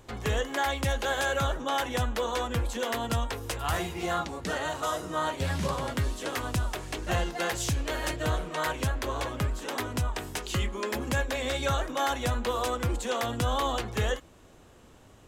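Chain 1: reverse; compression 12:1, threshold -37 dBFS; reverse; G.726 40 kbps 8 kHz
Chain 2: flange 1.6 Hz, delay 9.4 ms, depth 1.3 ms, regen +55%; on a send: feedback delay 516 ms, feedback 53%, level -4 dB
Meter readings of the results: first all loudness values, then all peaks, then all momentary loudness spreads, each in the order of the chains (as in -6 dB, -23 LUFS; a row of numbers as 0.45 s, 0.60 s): -41.5 LUFS, -33.0 LUFS; -27.0 dBFS, -18.0 dBFS; 2 LU, 4 LU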